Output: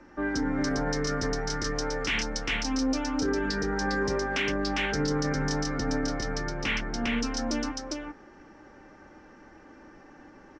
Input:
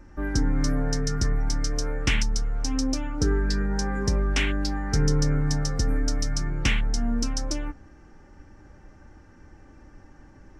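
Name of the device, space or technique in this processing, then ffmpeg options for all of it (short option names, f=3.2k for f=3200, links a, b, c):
DJ mixer with the lows and highs turned down: -filter_complex "[0:a]asettb=1/sr,asplit=3[a][b][c];[a]atrim=end=5.664[d];[b]atrim=start=5.66:end=7.09,asetpts=PTS-STARTPTS,afade=t=in:d=0.004:c=qsin,afade=t=out:st=1.426:d=0.004:c=qsin,aemphasis=mode=reproduction:type=cd[e];[c]atrim=start=7.086[f];[d][e]acrossfade=d=0.004:c1=hsin:c2=qsin[g];[g][f]acrossfade=d=0.004:c1=qsin:c2=hsin,acrossover=split=210 6100:gain=0.126 1 0.0631[h][i][j];[h][i][j]amix=inputs=3:normalize=0,aecho=1:1:403:0.596,alimiter=limit=-23dB:level=0:latency=1:release=20,volume=3.5dB"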